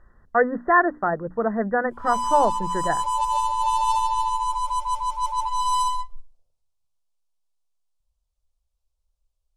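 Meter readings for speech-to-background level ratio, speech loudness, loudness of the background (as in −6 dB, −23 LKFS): 1.5 dB, −23.0 LKFS, −24.5 LKFS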